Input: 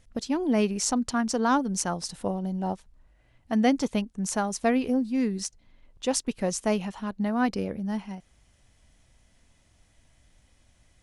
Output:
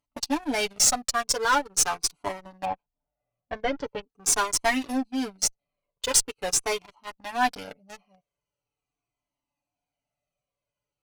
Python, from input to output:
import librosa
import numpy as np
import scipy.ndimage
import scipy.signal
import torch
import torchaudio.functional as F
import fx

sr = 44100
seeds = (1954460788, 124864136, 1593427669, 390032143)

y = fx.wiener(x, sr, points=25)
y = fx.highpass(y, sr, hz=1100.0, slope=6)
y = fx.high_shelf(y, sr, hz=2900.0, db=7.5)
y = y + 0.73 * np.pad(y, (int(6.9 * sr / 1000.0), 0))[:len(y)]
y = fx.leveller(y, sr, passes=3)
y = fx.rider(y, sr, range_db=5, speed_s=2.0)
y = fx.tube_stage(y, sr, drive_db=9.0, bias=0.3)
y = fx.spacing_loss(y, sr, db_at_10k=38, at=(2.65, 4.03))
y = fx.comb_cascade(y, sr, direction='falling', hz=0.43)